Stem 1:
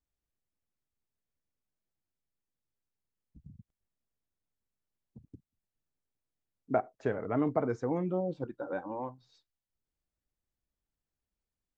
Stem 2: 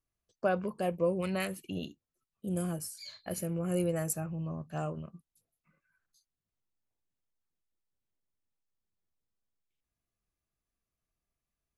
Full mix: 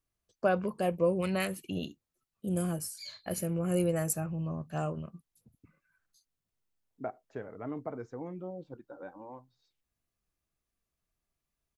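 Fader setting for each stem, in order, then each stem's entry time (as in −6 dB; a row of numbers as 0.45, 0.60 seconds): −9.0, +2.0 decibels; 0.30, 0.00 seconds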